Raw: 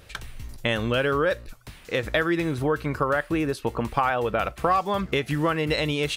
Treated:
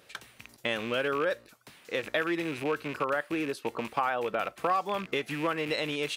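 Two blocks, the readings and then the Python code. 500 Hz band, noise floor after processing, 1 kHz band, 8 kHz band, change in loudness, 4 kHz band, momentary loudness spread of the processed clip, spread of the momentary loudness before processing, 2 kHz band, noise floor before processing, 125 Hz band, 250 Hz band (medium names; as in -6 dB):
-6.0 dB, -60 dBFS, -5.5 dB, -5.0 dB, -6.0 dB, -5.0 dB, 6 LU, 7 LU, -5.0 dB, -49 dBFS, -14.5 dB, -7.5 dB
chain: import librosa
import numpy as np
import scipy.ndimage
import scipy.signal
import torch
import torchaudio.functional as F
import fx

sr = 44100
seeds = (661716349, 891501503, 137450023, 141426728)

y = fx.rattle_buzz(x, sr, strikes_db=-32.0, level_db=-23.0)
y = scipy.signal.sosfilt(scipy.signal.butter(2, 230.0, 'highpass', fs=sr, output='sos'), y)
y = y * 10.0 ** (-5.5 / 20.0)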